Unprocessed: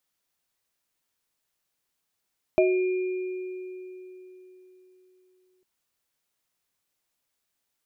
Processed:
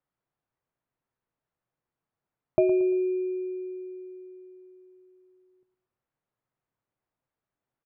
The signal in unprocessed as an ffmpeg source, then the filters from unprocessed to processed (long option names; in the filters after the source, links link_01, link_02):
-f lavfi -i "aevalsrc='0.119*pow(10,-3*t/3.89)*sin(2*PI*369*t)+0.188*pow(10,-3*t/0.32)*sin(2*PI*633*t)+0.0266*pow(10,-3*t/2.77)*sin(2*PI*2410*t)':duration=3.05:sample_rate=44100"
-filter_complex "[0:a]lowpass=1300,equalizer=frequency=130:width_type=o:width=0.5:gain=8.5,asplit=2[link_01][link_02];[link_02]aecho=0:1:114|228|342:0.2|0.0718|0.0259[link_03];[link_01][link_03]amix=inputs=2:normalize=0"